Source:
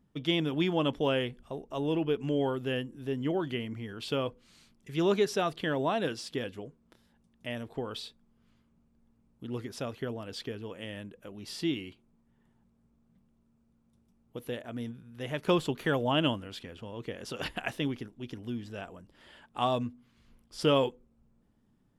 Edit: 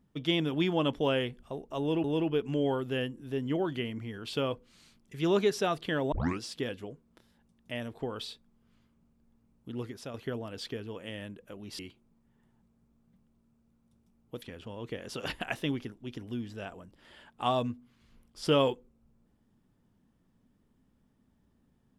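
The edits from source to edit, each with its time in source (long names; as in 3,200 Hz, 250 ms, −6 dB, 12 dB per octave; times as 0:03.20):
0:01.79–0:02.04: repeat, 2 plays
0:05.87: tape start 0.28 s
0:09.48–0:09.89: fade out, to −7 dB
0:11.54–0:11.81: remove
0:14.44–0:16.58: remove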